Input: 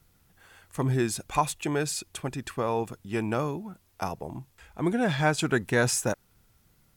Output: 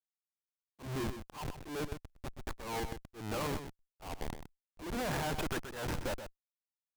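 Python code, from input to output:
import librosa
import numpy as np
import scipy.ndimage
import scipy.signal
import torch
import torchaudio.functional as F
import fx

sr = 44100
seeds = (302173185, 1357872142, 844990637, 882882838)

p1 = fx.leveller(x, sr, passes=1)
p2 = fx.bandpass_q(p1, sr, hz=1000.0, q=1.2)
p3 = fx.schmitt(p2, sr, flips_db=-35.0)
p4 = fx.auto_swell(p3, sr, attack_ms=194.0)
p5 = p4 + fx.echo_single(p4, sr, ms=126, db=-9.5, dry=0)
y = F.gain(torch.from_numpy(p5), -1.5).numpy()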